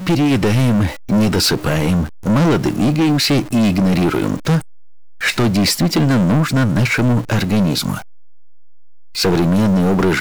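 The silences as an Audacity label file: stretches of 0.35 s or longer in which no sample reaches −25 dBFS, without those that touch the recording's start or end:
4.600000	5.210000	silence
7.990000	9.160000	silence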